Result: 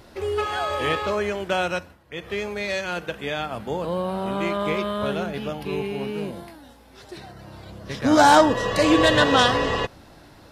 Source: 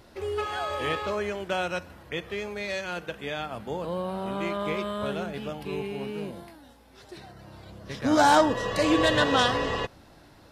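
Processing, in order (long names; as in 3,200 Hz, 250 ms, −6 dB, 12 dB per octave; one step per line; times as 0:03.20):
0:01.73–0:02.33: duck −13.5 dB, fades 0.25 s
0:04.78–0:06.16: notch filter 7,900 Hz, Q 7.2
level +5 dB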